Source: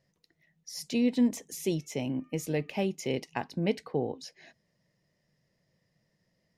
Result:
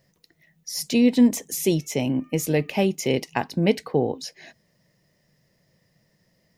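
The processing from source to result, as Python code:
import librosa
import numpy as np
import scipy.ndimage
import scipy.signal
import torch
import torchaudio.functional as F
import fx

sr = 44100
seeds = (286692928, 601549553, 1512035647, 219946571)

y = fx.high_shelf(x, sr, hz=12000.0, db=11.0)
y = F.gain(torch.from_numpy(y), 8.5).numpy()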